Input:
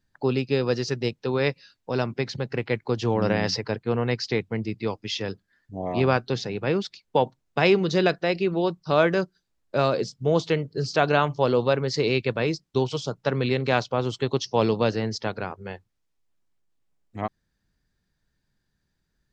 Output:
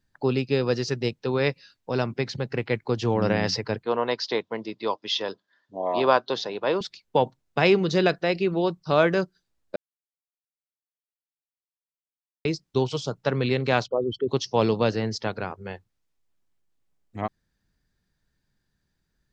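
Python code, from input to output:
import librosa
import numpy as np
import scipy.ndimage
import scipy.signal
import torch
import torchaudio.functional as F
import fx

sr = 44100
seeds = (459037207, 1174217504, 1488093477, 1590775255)

y = fx.cabinet(x, sr, low_hz=320.0, low_slope=12, high_hz=6400.0, hz=(600.0, 1000.0, 2300.0, 3500.0), db=(6, 10, -5, 7), at=(3.85, 6.81))
y = fx.envelope_sharpen(y, sr, power=3.0, at=(13.86, 14.28), fade=0.02)
y = fx.edit(y, sr, fx.silence(start_s=9.76, length_s=2.69), tone=tone)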